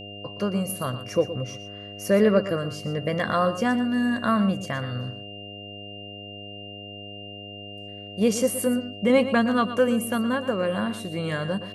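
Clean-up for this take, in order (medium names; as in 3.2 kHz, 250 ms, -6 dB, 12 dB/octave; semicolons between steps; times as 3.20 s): de-hum 101.6 Hz, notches 7; band-stop 2.8 kHz, Q 30; inverse comb 119 ms -12.5 dB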